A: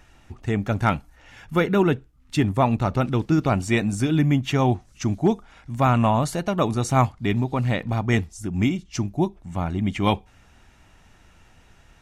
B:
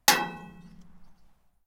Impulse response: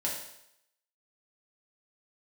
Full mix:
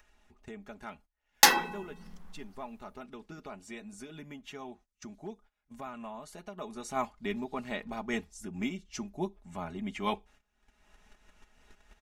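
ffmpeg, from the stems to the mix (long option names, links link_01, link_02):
-filter_complex "[0:a]adynamicequalizer=threshold=0.0355:dfrequency=130:dqfactor=0.94:tfrequency=130:tqfactor=0.94:attack=5:release=100:ratio=0.375:range=2:mode=cutabove:tftype=bell,aecho=1:1:4.8:0.65,volume=-10.5dB,afade=type=in:start_time=6.53:duration=0.66:silence=0.223872[link_01];[1:a]adelay=1350,volume=1dB[link_02];[link_01][link_02]amix=inputs=2:normalize=0,agate=range=-22dB:threshold=-56dB:ratio=16:detection=peak,equalizer=frequency=120:width=1.4:gain=-14,acompressor=mode=upward:threshold=-39dB:ratio=2.5"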